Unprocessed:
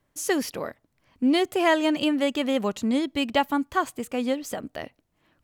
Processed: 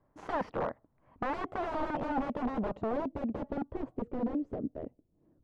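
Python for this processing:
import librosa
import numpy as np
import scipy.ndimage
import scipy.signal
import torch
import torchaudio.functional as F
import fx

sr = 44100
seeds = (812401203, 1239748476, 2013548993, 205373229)

y = (np.mod(10.0 ** (24.5 / 20.0) * x + 1.0, 2.0) - 1.0) / 10.0 ** (24.5 / 20.0)
y = fx.filter_sweep_lowpass(y, sr, from_hz=1000.0, to_hz=400.0, start_s=1.23, end_s=4.55, q=1.3)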